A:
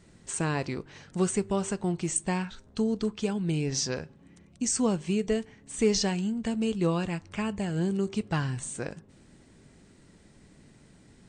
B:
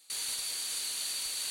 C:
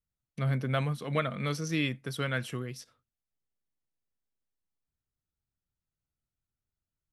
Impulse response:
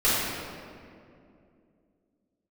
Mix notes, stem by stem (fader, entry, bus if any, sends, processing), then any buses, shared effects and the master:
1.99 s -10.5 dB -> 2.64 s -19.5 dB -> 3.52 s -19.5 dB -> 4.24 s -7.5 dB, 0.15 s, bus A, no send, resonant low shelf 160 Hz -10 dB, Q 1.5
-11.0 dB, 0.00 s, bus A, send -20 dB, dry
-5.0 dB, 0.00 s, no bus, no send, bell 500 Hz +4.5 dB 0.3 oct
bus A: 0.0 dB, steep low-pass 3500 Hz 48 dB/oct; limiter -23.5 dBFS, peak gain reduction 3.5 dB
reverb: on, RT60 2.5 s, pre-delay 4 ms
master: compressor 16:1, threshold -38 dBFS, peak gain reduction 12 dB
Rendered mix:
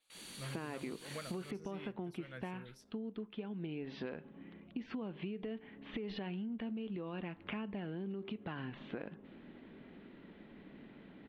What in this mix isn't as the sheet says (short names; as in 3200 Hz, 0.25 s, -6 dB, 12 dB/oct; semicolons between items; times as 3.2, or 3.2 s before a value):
stem A -10.5 dB -> -1.0 dB; stem C -5.0 dB -> -16.0 dB